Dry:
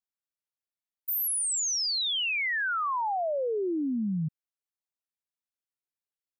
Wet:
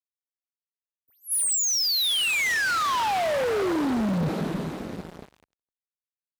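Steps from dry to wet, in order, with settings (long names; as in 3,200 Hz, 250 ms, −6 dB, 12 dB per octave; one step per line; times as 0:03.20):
hold until the input has moved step −59.5 dBFS
dynamic equaliser 3,900 Hz, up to +6 dB, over −47 dBFS, Q 4.7
in parallel at −2.5 dB: compressor whose output falls as the input rises −39 dBFS, ratio −1
on the sum: low-shelf EQ 120 Hz +10.5 dB
on a send at −4 dB: convolution reverb RT60 4.5 s, pre-delay 10 ms
on the sum: reverb reduction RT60 0.75 s
feedback delay with all-pass diffusion 921 ms, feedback 42%, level −16 dB
gain into a clipping stage and back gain 29.5 dB
high-pass filter 42 Hz
level that may rise only so fast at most 340 dB per second
level +6.5 dB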